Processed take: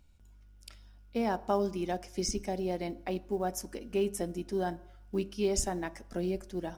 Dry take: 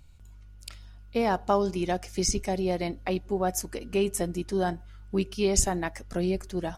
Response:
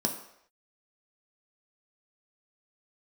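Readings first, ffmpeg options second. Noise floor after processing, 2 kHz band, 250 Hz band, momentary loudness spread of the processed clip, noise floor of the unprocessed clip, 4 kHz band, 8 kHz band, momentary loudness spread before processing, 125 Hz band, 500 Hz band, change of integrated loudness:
-56 dBFS, -7.0 dB, -5.0 dB, 8 LU, -48 dBFS, -6.5 dB, -8.0 dB, 8 LU, -7.0 dB, -4.5 dB, -5.5 dB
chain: -filter_complex "[0:a]acrusher=bits=8:mode=log:mix=0:aa=0.000001,asplit=2[a][b];[1:a]atrim=start_sample=2205,lowpass=7.4k[c];[b][c]afir=irnorm=-1:irlink=0,volume=-17dB[d];[a][d]amix=inputs=2:normalize=0,volume=-8dB"

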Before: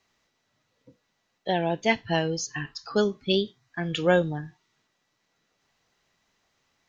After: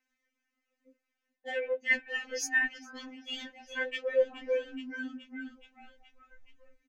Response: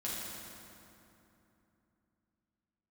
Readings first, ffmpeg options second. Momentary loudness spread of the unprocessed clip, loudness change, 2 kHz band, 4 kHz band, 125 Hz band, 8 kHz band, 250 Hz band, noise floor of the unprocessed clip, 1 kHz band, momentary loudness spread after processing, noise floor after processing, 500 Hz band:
12 LU, -6.0 dB, +1.5 dB, -8.5 dB, under -40 dB, n/a, -13.5 dB, -75 dBFS, -16.5 dB, 16 LU, under -85 dBFS, -6.0 dB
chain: -filter_complex "[0:a]afwtdn=0.0112,acrossover=split=230[a][b];[a]alimiter=level_in=7dB:limit=-24dB:level=0:latency=1,volume=-7dB[c];[c][b]amix=inputs=2:normalize=0,asplit=7[d][e][f][g][h][i][j];[e]adelay=423,afreqshift=-31,volume=-20dB[k];[f]adelay=846,afreqshift=-62,volume=-23.9dB[l];[g]adelay=1269,afreqshift=-93,volume=-27.8dB[m];[h]adelay=1692,afreqshift=-124,volume=-31.6dB[n];[i]adelay=2115,afreqshift=-155,volume=-35.5dB[o];[j]adelay=2538,afreqshift=-186,volume=-39.4dB[p];[d][k][l][m][n][o][p]amix=inputs=7:normalize=0,areverse,acompressor=threshold=-32dB:ratio=12,areverse,equalizer=f=1k:t=o:w=1:g=-9,equalizer=f=2k:t=o:w=1:g=11,equalizer=f=4k:t=o:w=1:g=-10,afftfilt=real='re*3.46*eq(mod(b,12),0)':imag='im*3.46*eq(mod(b,12),0)':win_size=2048:overlap=0.75,volume=8.5dB"

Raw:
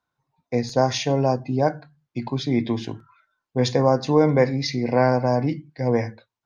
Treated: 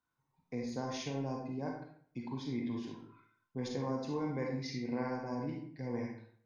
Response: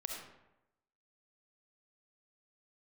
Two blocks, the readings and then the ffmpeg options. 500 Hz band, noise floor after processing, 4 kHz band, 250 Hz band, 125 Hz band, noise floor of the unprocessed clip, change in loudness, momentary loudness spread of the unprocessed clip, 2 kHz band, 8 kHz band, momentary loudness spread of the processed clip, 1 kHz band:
-19.5 dB, -82 dBFS, -17.5 dB, -14.0 dB, -17.5 dB, under -85 dBFS, -17.5 dB, 13 LU, -16.5 dB, n/a, 10 LU, -18.5 dB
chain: -filter_complex "[0:a]equalizer=f=250:t=o:w=0.67:g=4,equalizer=f=630:t=o:w=0.67:g=-7,equalizer=f=4k:t=o:w=0.67:g=-4,acompressor=threshold=-49dB:ratio=1.5[a];[1:a]atrim=start_sample=2205,asetrate=70560,aresample=44100[b];[a][b]afir=irnorm=-1:irlink=0"

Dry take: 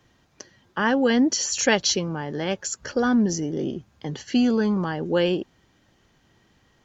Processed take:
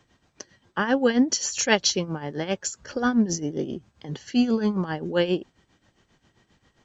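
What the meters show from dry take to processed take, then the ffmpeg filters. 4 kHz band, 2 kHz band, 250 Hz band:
-1.0 dB, -1.5 dB, -1.5 dB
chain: -af "tremolo=f=7.5:d=0.73,volume=1.5dB" -ar 32000 -c:a mp2 -b:a 96k

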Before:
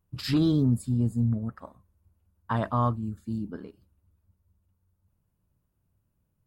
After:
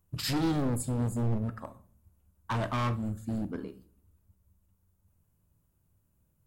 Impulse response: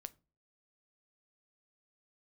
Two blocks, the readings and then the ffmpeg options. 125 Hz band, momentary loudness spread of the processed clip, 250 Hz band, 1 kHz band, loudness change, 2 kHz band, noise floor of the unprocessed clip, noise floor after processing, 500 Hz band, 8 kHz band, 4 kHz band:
-4.5 dB, 12 LU, -5.0 dB, -3.5 dB, -4.5 dB, +1.5 dB, -76 dBFS, -73 dBFS, -1.5 dB, n/a, +0.5 dB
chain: -filter_complex "[0:a]acrossover=split=430[a][b];[b]aexciter=amount=2.1:drive=5.1:freq=6.5k[c];[a][c]amix=inputs=2:normalize=0,asoftclip=type=hard:threshold=-29dB[d];[1:a]atrim=start_sample=2205,asetrate=25578,aresample=44100[e];[d][e]afir=irnorm=-1:irlink=0,volume=4.5dB"

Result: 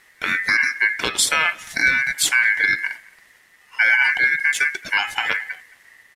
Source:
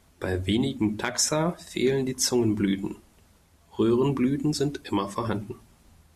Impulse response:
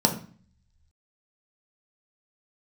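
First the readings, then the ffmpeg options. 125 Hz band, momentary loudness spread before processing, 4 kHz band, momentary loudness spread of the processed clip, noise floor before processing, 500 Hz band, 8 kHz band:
under -15 dB, 10 LU, +8.0 dB, 10 LU, -60 dBFS, -11.5 dB, +5.0 dB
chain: -filter_complex "[0:a]aeval=exprs='val(0)*sin(2*PI*1900*n/s)':c=same,asplit=2[a][b];[b]adelay=220,highpass=300,lowpass=3.4k,asoftclip=type=hard:threshold=-21dB,volume=-23dB[c];[a][c]amix=inputs=2:normalize=0,volume=8.5dB"

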